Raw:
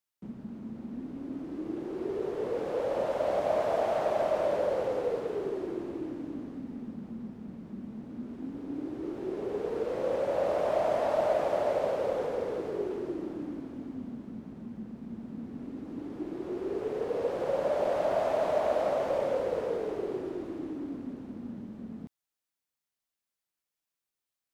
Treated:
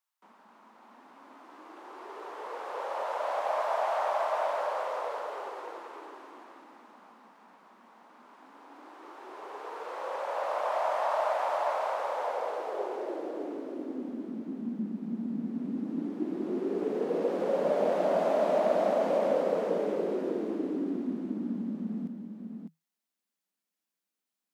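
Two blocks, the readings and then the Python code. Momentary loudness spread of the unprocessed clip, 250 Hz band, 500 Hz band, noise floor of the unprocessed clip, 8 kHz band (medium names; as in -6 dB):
14 LU, +1.5 dB, -1.5 dB, under -85 dBFS, no reading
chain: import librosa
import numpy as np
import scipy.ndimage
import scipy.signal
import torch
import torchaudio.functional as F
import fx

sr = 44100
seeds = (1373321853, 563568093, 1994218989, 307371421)

y = scipy.signal.sosfilt(scipy.signal.cheby1(8, 1.0, 160.0, 'highpass', fs=sr, output='sos'), x)
y = fx.filter_sweep_highpass(y, sr, from_hz=980.0, to_hz=200.0, start_s=12.04, end_s=14.89, q=2.5)
y = y + 10.0 ** (-6.0 / 20.0) * np.pad(y, (int(603 * sr / 1000.0), 0))[:len(y)]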